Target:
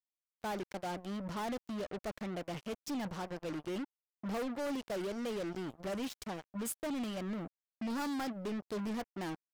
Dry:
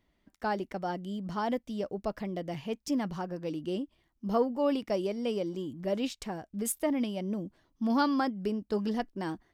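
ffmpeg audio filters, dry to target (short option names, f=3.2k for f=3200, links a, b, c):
-af "acrusher=bits=5:mix=0:aa=0.5,asoftclip=type=tanh:threshold=-32.5dB,volume=-1.5dB"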